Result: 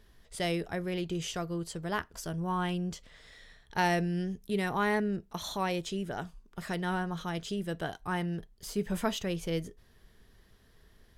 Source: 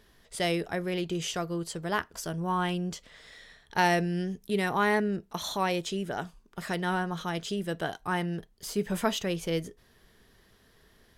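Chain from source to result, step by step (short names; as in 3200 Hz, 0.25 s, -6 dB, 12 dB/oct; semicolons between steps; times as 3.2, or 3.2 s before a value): low shelf 110 Hz +10 dB; gain -4 dB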